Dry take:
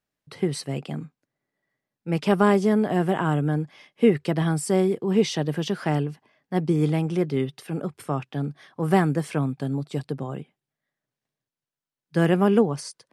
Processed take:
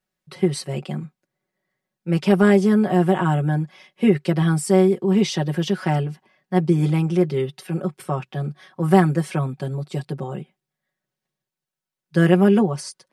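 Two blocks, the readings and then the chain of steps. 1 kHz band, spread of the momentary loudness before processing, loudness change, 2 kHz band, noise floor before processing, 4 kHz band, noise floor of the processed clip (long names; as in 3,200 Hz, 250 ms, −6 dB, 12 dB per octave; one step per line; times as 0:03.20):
+2.5 dB, 12 LU, +4.0 dB, +3.5 dB, below −85 dBFS, +2.5 dB, below −85 dBFS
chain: comb filter 5.4 ms, depth 93%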